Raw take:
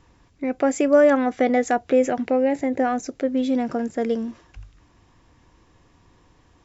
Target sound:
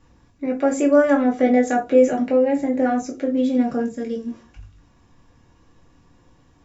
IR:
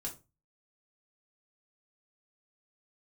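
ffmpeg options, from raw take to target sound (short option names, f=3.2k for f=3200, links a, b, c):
-filter_complex "[0:a]asplit=3[a][b][c];[a]afade=t=out:st=3.86:d=0.02[d];[b]equalizer=f=820:w=0.67:g=-13,afade=t=in:st=3.86:d=0.02,afade=t=out:st=4.26:d=0.02[e];[c]afade=t=in:st=4.26:d=0.02[f];[d][e][f]amix=inputs=3:normalize=0[g];[1:a]atrim=start_sample=2205[h];[g][h]afir=irnorm=-1:irlink=0"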